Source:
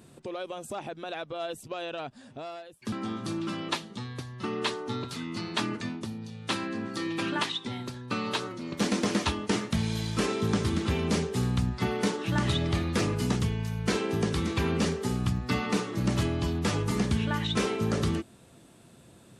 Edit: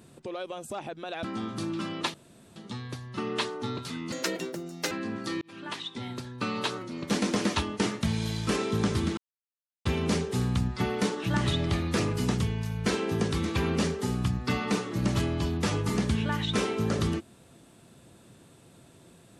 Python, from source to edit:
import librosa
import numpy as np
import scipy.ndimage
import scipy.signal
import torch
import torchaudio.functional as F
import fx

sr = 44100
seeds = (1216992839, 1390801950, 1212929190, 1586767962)

y = fx.edit(x, sr, fx.cut(start_s=1.23, length_s=1.68),
    fx.insert_room_tone(at_s=3.82, length_s=0.42),
    fx.speed_span(start_s=5.38, length_s=1.23, speed=1.55),
    fx.fade_in_span(start_s=7.11, length_s=0.73),
    fx.insert_silence(at_s=10.87, length_s=0.68), tone=tone)